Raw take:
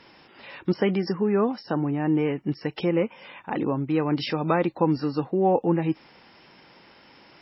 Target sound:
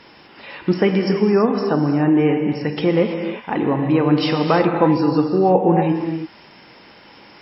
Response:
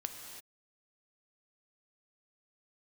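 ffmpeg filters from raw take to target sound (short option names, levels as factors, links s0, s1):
-filter_complex "[1:a]atrim=start_sample=2205[s0];[0:a][s0]afir=irnorm=-1:irlink=0,volume=2.51"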